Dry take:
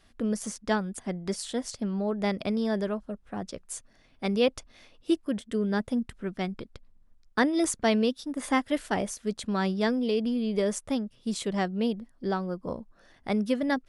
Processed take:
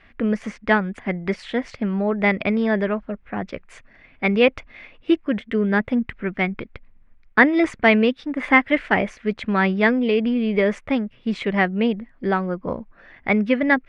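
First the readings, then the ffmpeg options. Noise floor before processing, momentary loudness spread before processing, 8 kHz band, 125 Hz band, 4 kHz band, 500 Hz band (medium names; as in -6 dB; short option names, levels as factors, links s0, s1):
-61 dBFS, 12 LU, under -10 dB, +7.0 dB, +4.0 dB, +7.5 dB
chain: -af "lowpass=f=2200:t=q:w=3.4,volume=2.24"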